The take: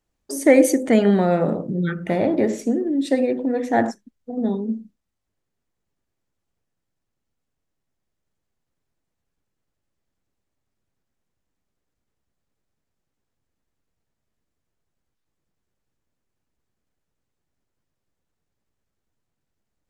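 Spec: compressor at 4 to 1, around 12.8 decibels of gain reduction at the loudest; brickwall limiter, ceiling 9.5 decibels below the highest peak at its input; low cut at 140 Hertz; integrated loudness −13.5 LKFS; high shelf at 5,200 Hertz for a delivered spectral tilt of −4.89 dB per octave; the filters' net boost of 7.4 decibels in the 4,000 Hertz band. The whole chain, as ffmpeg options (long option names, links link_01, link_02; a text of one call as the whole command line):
ffmpeg -i in.wav -af "highpass=140,equalizer=frequency=4000:width_type=o:gain=7.5,highshelf=frequency=5200:gain=4,acompressor=threshold=-24dB:ratio=4,volume=17.5dB,alimiter=limit=-4.5dB:level=0:latency=1" out.wav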